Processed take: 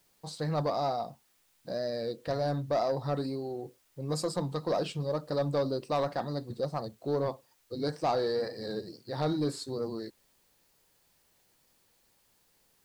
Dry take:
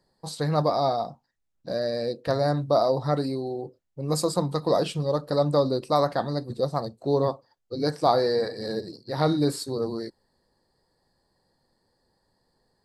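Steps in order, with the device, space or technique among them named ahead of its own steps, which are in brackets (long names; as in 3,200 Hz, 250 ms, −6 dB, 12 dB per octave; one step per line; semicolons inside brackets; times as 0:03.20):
compact cassette (soft clipping −15 dBFS, distortion −17 dB; low-pass filter 8,800 Hz; tape wow and flutter; white noise bed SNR 36 dB)
level −5.5 dB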